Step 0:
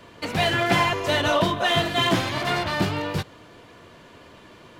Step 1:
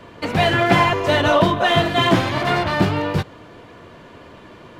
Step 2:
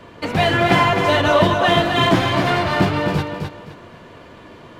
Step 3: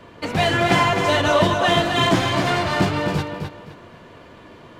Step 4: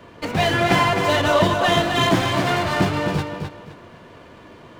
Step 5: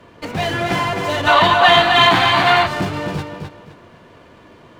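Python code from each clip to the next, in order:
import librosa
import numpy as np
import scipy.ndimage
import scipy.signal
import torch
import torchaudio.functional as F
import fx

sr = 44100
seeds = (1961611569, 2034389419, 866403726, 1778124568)

y1 = fx.high_shelf(x, sr, hz=3000.0, db=-9.0)
y1 = F.gain(torch.from_numpy(y1), 6.5).numpy()
y2 = fx.echo_feedback(y1, sr, ms=260, feedback_pct=26, wet_db=-6)
y3 = fx.dynamic_eq(y2, sr, hz=7300.0, q=0.95, threshold_db=-41.0, ratio=4.0, max_db=7)
y3 = F.gain(torch.from_numpy(y3), -2.5).numpy()
y4 = fx.running_max(y3, sr, window=3)
y5 = fx.fold_sine(y4, sr, drive_db=3, ceiling_db=-4.0)
y5 = fx.spec_box(y5, sr, start_s=1.27, length_s=1.4, low_hz=680.0, high_hz=4700.0, gain_db=11)
y5 = F.gain(torch.from_numpy(y5), -8.0).numpy()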